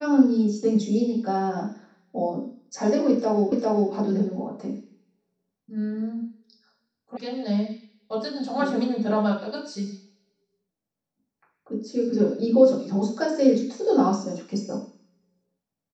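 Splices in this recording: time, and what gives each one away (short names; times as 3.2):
3.52 repeat of the last 0.4 s
7.17 sound cut off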